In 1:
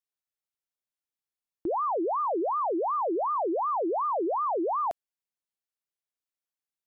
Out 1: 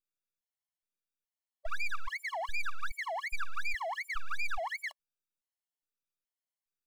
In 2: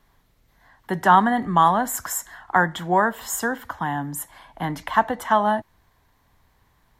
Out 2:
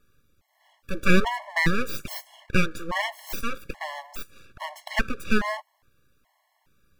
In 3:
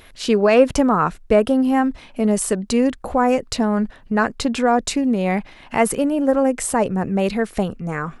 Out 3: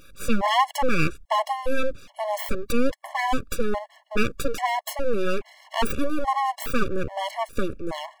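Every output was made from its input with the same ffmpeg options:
-af "aeval=exprs='abs(val(0))':c=same,afftfilt=real='re*gt(sin(2*PI*1.2*pts/sr)*(1-2*mod(floor(b*sr/1024/560),2)),0)':imag='im*gt(sin(2*PI*1.2*pts/sr)*(1-2*mod(floor(b*sr/1024/560),2)),0)':win_size=1024:overlap=0.75"

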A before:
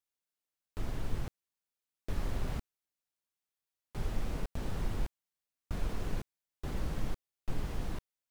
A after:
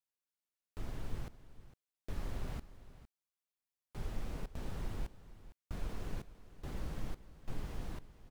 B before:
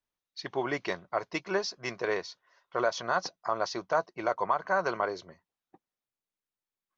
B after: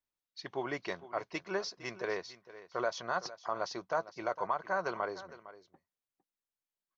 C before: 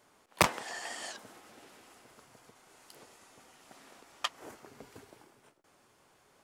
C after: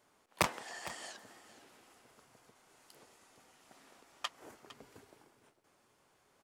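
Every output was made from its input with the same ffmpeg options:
-af "aecho=1:1:457:0.158,volume=0.531"

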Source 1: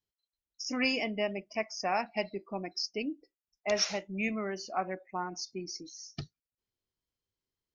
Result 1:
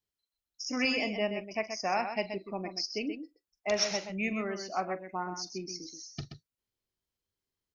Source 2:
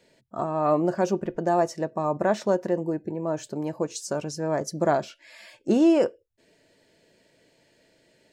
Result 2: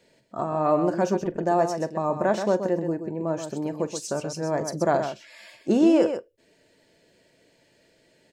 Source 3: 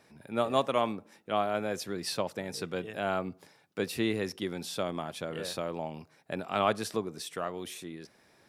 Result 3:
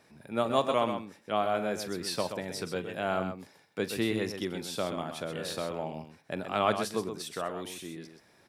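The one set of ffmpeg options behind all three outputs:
-af "aecho=1:1:43|128:0.15|0.398"

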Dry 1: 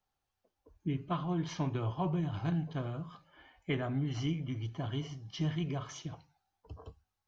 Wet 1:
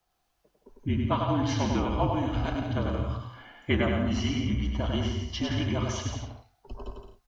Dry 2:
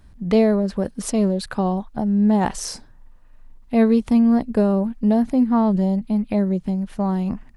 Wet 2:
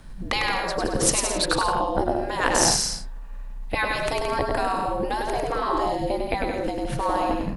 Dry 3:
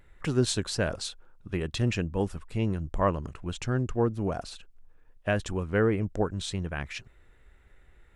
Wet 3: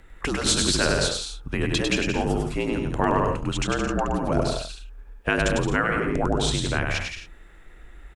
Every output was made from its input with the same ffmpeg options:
-af "aecho=1:1:100|170|219|253.3|277.3:0.631|0.398|0.251|0.158|0.1,afftfilt=real='re*lt(hypot(re,im),0.251)':imag='im*lt(hypot(re,im),0.251)':win_size=1024:overlap=0.75,afreqshift=-49,volume=2.66"

